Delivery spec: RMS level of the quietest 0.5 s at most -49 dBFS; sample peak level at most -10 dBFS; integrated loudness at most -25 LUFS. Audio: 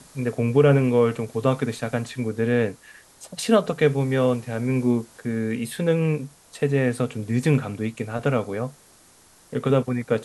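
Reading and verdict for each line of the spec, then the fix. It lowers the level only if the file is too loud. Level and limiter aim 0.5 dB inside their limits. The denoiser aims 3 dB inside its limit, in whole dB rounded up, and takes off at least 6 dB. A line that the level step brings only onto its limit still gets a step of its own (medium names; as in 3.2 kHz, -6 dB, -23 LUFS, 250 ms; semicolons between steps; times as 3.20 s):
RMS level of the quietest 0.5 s -54 dBFS: pass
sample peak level -5.5 dBFS: fail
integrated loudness -23.5 LUFS: fail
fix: trim -2 dB; peak limiter -10.5 dBFS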